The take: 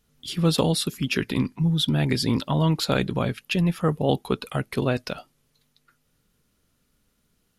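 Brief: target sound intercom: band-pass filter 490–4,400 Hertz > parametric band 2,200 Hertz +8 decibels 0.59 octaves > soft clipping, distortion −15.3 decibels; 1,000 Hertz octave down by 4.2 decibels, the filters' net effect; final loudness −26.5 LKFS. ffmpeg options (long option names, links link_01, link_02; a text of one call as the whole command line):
ffmpeg -i in.wav -af "highpass=490,lowpass=4400,equalizer=frequency=1000:width_type=o:gain=-6,equalizer=frequency=2200:width_type=o:width=0.59:gain=8,asoftclip=threshold=-18dB,volume=4.5dB" out.wav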